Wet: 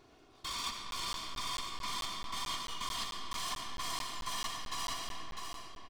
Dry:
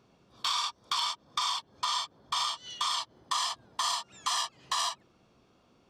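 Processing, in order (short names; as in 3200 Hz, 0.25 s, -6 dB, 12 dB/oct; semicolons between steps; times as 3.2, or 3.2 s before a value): minimum comb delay 2.8 ms; in parallel at -1 dB: limiter -27.5 dBFS, peak gain reduction 7.5 dB; on the sum: echo 0.652 s -17 dB; reverse; compressor, threshold -36 dBFS, peak gain reduction 12.5 dB; reverse; reverb RT60 3.2 s, pre-delay 40 ms, DRR 1.5 dB; crackling interface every 0.22 s, samples 512, zero, from 0.91; gain -1.5 dB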